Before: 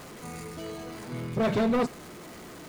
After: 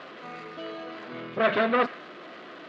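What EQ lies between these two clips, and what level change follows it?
dynamic equaliser 1,800 Hz, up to +6 dB, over −43 dBFS, Q 0.99
loudspeaker in its box 430–3,400 Hz, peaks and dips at 440 Hz −5 dB, 880 Hz −9 dB, 2,200 Hz −5 dB
+6.5 dB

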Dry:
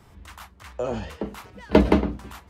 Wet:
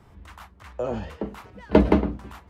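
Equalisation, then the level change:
high-shelf EQ 2,900 Hz −8.5 dB
0.0 dB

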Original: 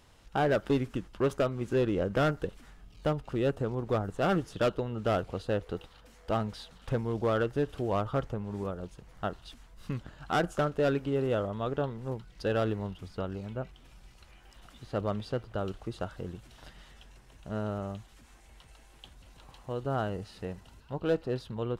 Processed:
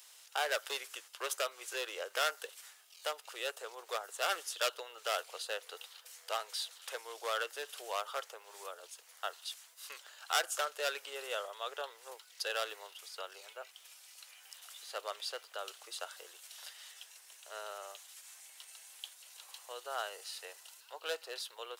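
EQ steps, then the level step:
Butterworth high-pass 440 Hz 36 dB per octave
first difference
+12.5 dB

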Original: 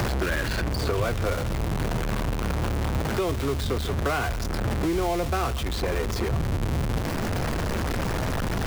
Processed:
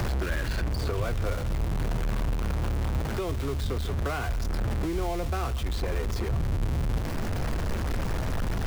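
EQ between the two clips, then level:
low-shelf EQ 73 Hz +10.5 dB
−6.0 dB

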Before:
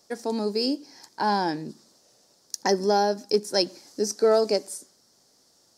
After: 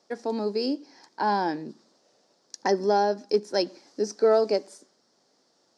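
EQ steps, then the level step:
band-pass filter 200–6,800 Hz
high-shelf EQ 4,900 Hz −11 dB
0.0 dB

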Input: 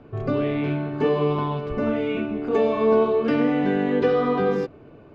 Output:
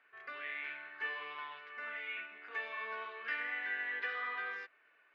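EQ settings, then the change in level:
four-pole ladder band-pass 2,000 Hz, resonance 65%
+3.0 dB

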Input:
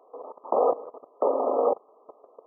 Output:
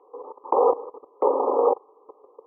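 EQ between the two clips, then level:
high-frequency loss of the air 410 metres
dynamic equaliser 850 Hz, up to +4 dB, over −37 dBFS, Q 1.3
phaser with its sweep stopped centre 980 Hz, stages 8
+5.5 dB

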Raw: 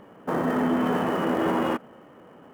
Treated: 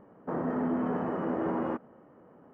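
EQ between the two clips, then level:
high-frequency loss of the air 55 metres
head-to-tape spacing loss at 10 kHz 22 dB
parametric band 3,400 Hz −11 dB 1.1 octaves
−5.0 dB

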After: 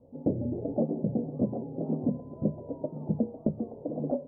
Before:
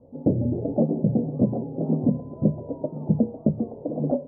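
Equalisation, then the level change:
dynamic equaliser 130 Hz, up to −5 dB, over −32 dBFS, Q 1.1
−5.0 dB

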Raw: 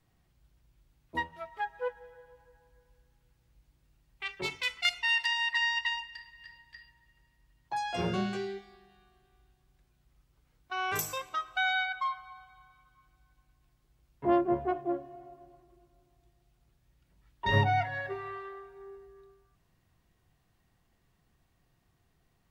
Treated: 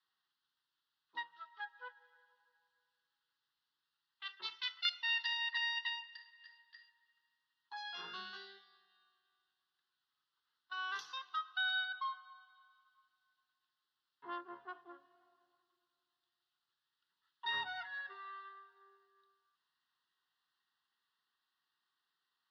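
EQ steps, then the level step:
high-pass filter 920 Hz 12 dB per octave
transistor ladder low-pass 5,300 Hz, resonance 30%
phaser with its sweep stopped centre 2,300 Hz, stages 6
+2.0 dB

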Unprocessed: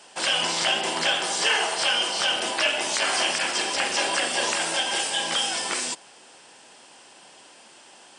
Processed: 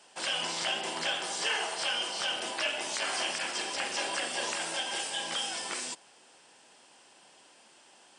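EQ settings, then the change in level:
high-pass filter 60 Hz
−8.5 dB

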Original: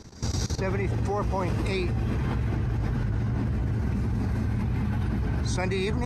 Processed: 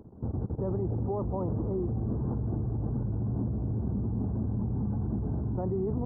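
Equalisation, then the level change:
Gaussian smoothing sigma 11 samples
low-shelf EQ 73 Hz −11 dB
0.0 dB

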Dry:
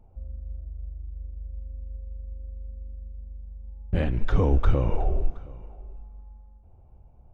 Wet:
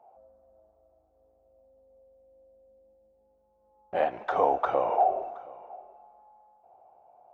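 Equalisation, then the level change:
high-pass with resonance 720 Hz, resonance Q 4.6
high-shelf EQ 2,100 Hz −11.5 dB
+4.0 dB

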